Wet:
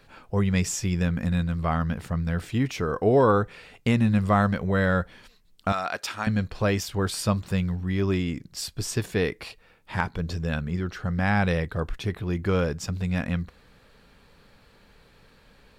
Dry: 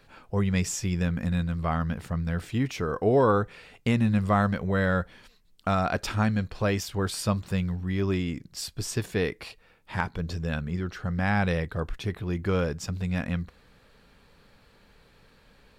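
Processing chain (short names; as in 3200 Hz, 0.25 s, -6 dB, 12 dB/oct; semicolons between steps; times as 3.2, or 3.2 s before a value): 5.72–6.27 HPF 1100 Hz 6 dB/oct; gain +2 dB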